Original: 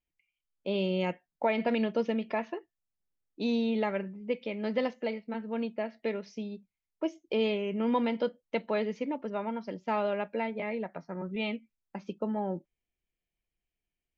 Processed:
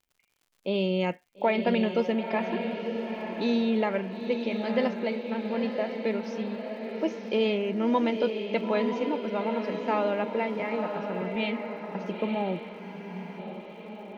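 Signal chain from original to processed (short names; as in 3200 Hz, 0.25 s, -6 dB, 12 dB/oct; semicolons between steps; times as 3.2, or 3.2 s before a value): diffused feedback echo 0.934 s, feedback 53%, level -6 dB; crackle 120/s -56 dBFS; spectral freeze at 12.81, 0.58 s; gain +3 dB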